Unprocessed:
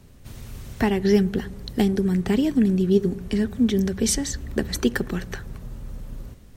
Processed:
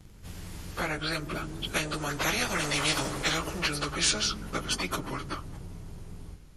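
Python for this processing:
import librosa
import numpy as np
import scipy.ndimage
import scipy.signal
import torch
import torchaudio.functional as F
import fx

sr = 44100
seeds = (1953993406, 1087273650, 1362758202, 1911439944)

y = fx.pitch_bins(x, sr, semitones=-4.5)
y = fx.doppler_pass(y, sr, speed_mps=7, closest_m=1.4, pass_at_s=2.89)
y = fx.spectral_comp(y, sr, ratio=10.0)
y = F.gain(torch.from_numpy(y), -4.0).numpy()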